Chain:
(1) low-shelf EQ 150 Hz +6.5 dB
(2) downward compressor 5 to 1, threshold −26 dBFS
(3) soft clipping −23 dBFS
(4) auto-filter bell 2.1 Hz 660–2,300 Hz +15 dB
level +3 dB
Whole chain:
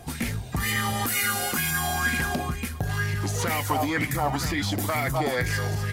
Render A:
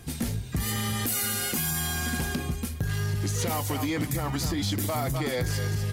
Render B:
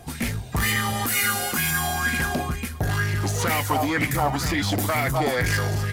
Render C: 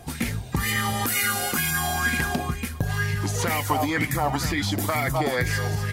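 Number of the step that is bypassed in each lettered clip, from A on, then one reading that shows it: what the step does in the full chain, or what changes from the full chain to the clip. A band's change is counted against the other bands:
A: 4, 2 kHz band −7.0 dB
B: 2, average gain reduction 3.5 dB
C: 3, distortion level −18 dB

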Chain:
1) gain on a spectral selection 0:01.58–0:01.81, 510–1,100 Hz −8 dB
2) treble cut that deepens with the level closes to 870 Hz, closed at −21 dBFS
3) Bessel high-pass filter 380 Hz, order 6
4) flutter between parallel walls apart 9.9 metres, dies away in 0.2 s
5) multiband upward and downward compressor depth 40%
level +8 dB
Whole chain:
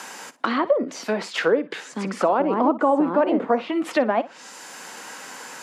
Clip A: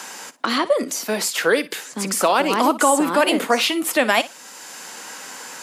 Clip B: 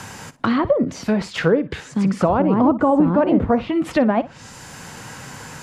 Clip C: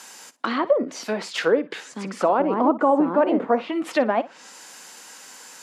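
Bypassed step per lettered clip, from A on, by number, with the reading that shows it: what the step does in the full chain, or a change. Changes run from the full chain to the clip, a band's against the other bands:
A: 2, 8 kHz band +13.0 dB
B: 3, 125 Hz band +14.5 dB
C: 5, change in momentary loudness spread +5 LU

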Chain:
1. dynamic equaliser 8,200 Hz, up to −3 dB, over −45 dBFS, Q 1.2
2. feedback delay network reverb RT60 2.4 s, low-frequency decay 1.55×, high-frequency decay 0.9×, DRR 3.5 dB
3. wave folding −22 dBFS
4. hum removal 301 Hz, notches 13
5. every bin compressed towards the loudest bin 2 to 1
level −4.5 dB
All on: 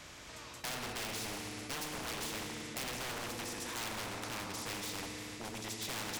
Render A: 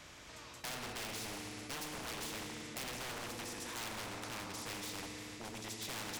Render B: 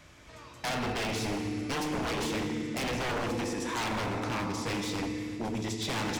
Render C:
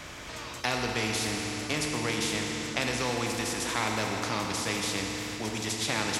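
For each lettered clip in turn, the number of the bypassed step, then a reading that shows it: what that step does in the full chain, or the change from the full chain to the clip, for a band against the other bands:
4, change in integrated loudness −3.0 LU
5, 8 kHz band −9.0 dB
3, change in crest factor +2.0 dB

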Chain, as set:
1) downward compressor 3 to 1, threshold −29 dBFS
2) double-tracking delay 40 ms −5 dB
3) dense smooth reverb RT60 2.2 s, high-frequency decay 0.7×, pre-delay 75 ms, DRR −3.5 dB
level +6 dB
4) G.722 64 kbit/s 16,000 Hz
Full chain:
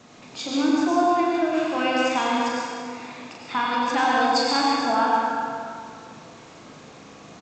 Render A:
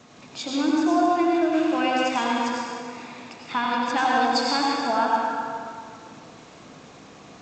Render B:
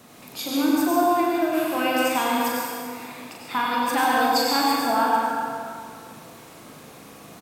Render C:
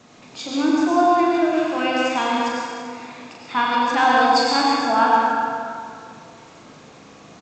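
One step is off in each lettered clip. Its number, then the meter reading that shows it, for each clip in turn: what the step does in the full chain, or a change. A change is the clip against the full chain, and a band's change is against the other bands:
2, 250 Hz band +1.5 dB
4, 8 kHz band +4.5 dB
1, 8 kHz band −2.0 dB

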